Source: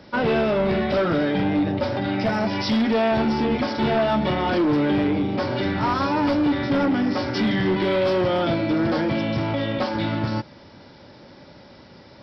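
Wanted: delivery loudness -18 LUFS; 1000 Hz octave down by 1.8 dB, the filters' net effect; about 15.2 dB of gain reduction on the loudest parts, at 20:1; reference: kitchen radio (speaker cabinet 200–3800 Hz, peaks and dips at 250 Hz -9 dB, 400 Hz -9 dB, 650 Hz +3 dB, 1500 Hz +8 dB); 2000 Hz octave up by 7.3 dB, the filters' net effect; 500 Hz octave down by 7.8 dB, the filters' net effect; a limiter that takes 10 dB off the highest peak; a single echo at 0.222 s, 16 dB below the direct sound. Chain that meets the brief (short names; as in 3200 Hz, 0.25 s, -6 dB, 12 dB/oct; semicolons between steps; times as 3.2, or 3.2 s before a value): bell 500 Hz -8.5 dB; bell 1000 Hz -4 dB; bell 2000 Hz +6 dB; compressor 20:1, threshold -35 dBFS; limiter -34.5 dBFS; speaker cabinet 200–3800 Hz, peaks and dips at 250 Hz -9 dB, 400 Hz -9 dB, 650 Hz +3 dB, 1500 Hz +8 dB; echo 0.222 s -16 dB; gain +24.5 dB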